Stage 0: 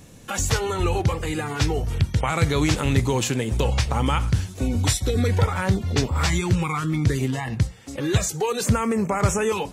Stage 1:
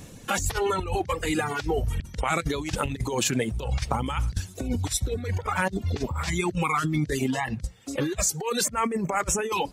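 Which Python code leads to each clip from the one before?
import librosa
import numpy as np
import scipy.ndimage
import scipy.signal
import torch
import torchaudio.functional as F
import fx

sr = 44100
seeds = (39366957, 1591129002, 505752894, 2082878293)

y = fx.dereverb_blind(x, sr, rt60_s=1.3)
y = fx.over_compress(y, sr, threshold_db=-26.0, ratio=-0.5)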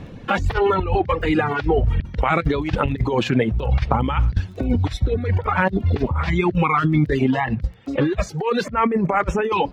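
y = fx.air_absorb(x, sr, metres=340.0)
y = fx.dmg_crackle(y, sr, seeds[0], per_s=12.0, level_db=-48.0)
y = y * 10.0 ** (8.5 / 20.0)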